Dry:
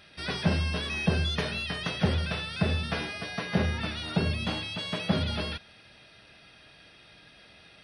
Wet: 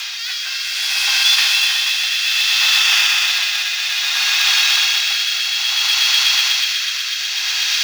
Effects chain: delta modulation 32 kbps, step -31.5 dBFS; steep high-pass 730 Hz 96 dB/oct; 0.62–1.06 tube stage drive 36 dB, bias 0.7; tilt shelf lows -7.5 dB, about 920 Hz; swelling echo 0.123 s, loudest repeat 5, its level -5 dB; rotary speaker horn 0.6 Hz; 2.79–3.28 notch 4100 Hz, Q 8.8; short-mantissa float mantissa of 2-bit; high shelf 2000 Hz +12 dB; gain +2.5 dB

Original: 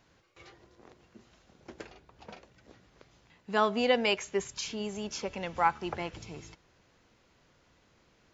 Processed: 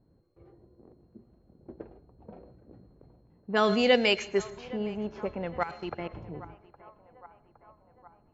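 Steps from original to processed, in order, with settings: whine 4200 Hz -51 dBFS; low-pass opened by the level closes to 340 Hz, open at -23.5 dBFS; 5.63–6.13 level quantiser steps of 19 dB; narrowing echo 0.814 s, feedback 67%, band-pass 910 Hz, level -19 dB; on a send at -18 dB: reverb RT60 0.50 s, pre-delay 98 ms; on the sum: dynamic EQ 960 Hz, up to -7 dB, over -47 dBFS, Q 2.1; 2.32–3.96 sustainer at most 38 dB/s; gain +4 dB

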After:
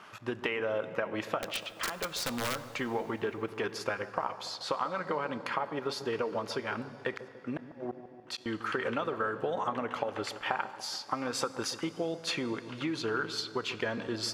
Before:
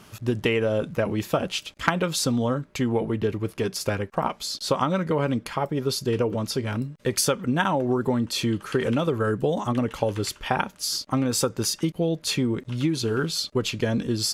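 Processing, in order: in parallel at -2 dB: level quantiser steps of 13 dB; on the sum: band-pass 1300 Hz, Q 1; compressor 10:1, threshold -28 dBFS, peak gain reduction 14.5 dB; 1.38–2.7 wrapped overs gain 25.5 dB; 7.16–8.46 flipped gate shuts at -23 dBFS, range -41 dB; analogue delay 0.144 s, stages 1024, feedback 63%, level -12.5 dB; on a send at -14.5 dB: reverb RT60 3.2 s, pre-delay 4 ms; on the sum: ending taper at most 590 dB/s

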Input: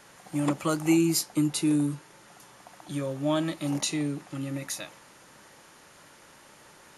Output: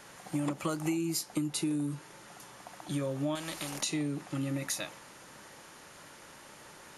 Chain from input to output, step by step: compressor 12:1, threshold -30 dBFS, peak gain reduction 12.5 dB; 3.35–3.83 spectral compressor 2:1; gain +1.5 dB

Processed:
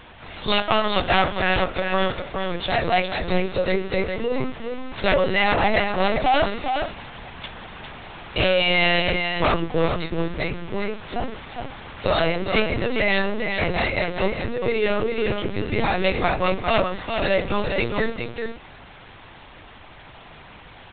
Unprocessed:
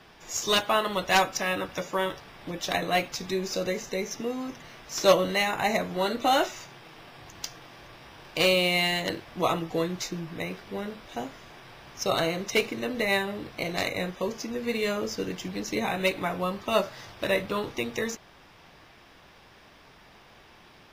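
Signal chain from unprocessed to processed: notches 60/120/180/240/300/360/420/480/540/600 Hz; sine folder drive 13 dB, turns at -6 dBFS; on a send: echo 0.408 s -5.5 dB; on the sum: LPC vocoder at 8 kHz pitch kept; gain -8 dB

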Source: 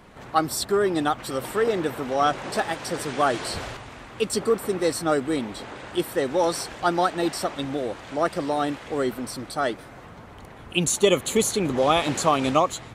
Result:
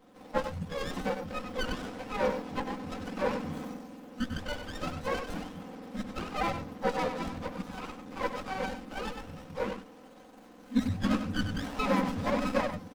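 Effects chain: spectrum mirrored in octaves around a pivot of 820 Hz; HPF 140 Hz; comb 3.9 ms, depth 91%; echo 97 ms -8.5 dB; running maximum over 17 samples; gain -8 dB

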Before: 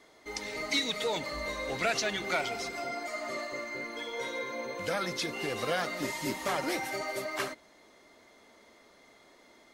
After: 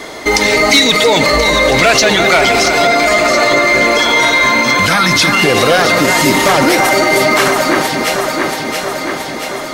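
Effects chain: 3.98–5.44 band shelf 500 Hz -14.5 dB 1.2 oct; in parallel at -2.5 dB: compressor, threshold -39 dBFS, peak gain reduction 13.5 dB; on the sum: hard clip -22.5 dBFS, distortion -20 dB; on a send: echo with dull and thin repeats by turns 0.339 s, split 2100 Hz, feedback 80%, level -8 dB; on the sum: maximiser +27.5 dB; gain -1 dB

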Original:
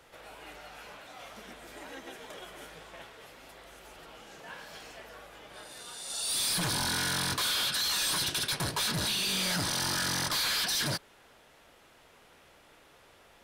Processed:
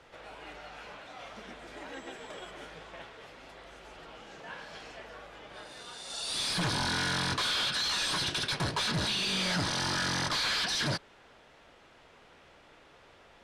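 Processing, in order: air absorption 82 m; 1.93–2.5 whine 7700 Hz -63 dBFS; gain +2 dB

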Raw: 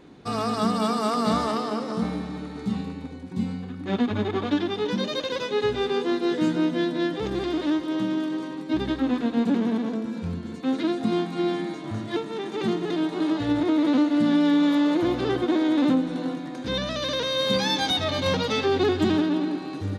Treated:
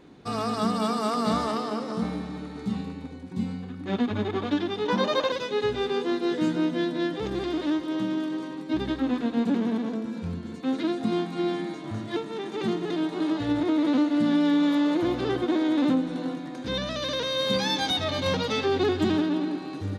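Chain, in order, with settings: 4.88–5.32 bell 930 Hz +13 dB 1.7 oct; gain -2 dB

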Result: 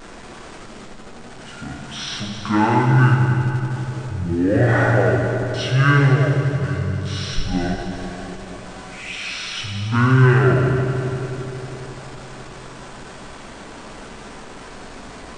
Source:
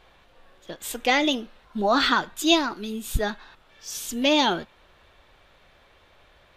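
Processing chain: zero-crossing step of -34.5 dBFS; FDN reverb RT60 1.8 s, low-frequency decay 0.9×, high-frequency decay 0.7×, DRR -0.5 dB; speed mistake 78 rpm record played at 33 rpm

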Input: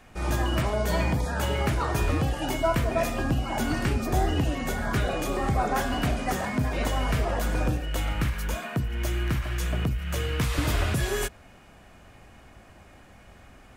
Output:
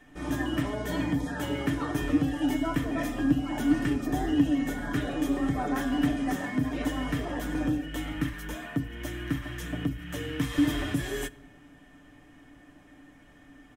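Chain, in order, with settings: notch 4500 Hz, Q 10; comb 6.8 ms, depth 51%; small resonant body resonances 280/1800/3200 Hz, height 16 dB, ringing for 65 ms; on a send: reverb RT60 1.5 s, pre-delay 6 ms, DRR 20 dB; on the sum: gain -8 dB

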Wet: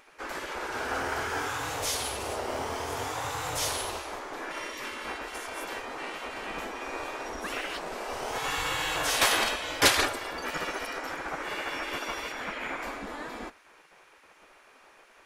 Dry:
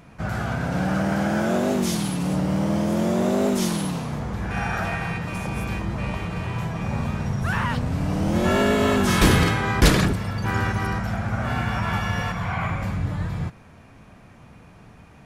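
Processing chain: 9.61–10.31 comb 5 ms, depth 56%; spectral gate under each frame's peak -15 dB weak

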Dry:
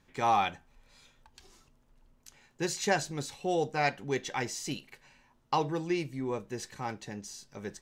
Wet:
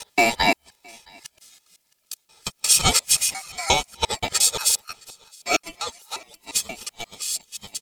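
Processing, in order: local time reversal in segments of 0.176 s; HPF 630 Hz 24 dB/oct; differentiator; comb 2.5 ms, depth 90%; on a send: echo 0.666 s -20.5 dB; on the sum: ring modulator 1500 Hz; dynamic EQ 4100 Hz, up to -4 dB, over -54 dBFS, Q 0.86; maximiser +27 dB; upward expander 1.5:1, over -37 dBFS

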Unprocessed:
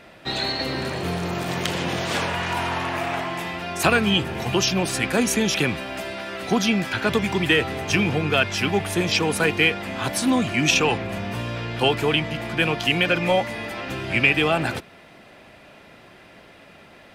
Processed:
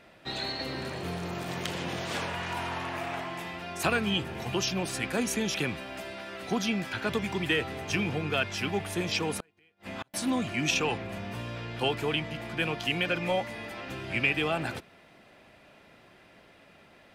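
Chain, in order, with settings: 9.4–10.14 flipped gate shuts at -17 dBFS, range -38 dB; gain -8.5 dB

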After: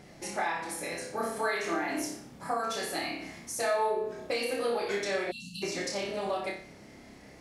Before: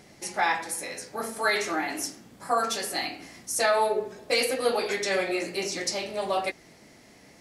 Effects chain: low shelf 110 Hz +5 dB; compressor, threshold -29 dBFS, peak gain reduction 10 dB; high shelf 3400 Hz -7 dB; flutter echo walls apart 5.1 m, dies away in 0.46 s; spectral delete 5.31–5.62, 270–2600 Hz

